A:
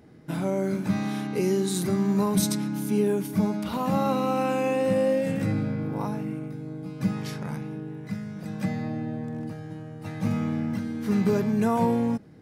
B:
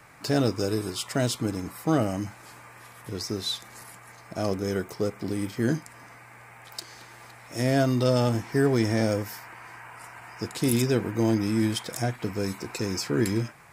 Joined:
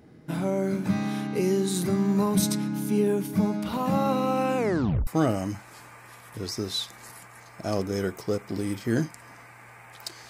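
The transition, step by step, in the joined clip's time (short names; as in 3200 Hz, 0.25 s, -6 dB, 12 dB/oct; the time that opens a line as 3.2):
A
4.57 tape stop 0.50 s
5.07 switch to B from 1.79 s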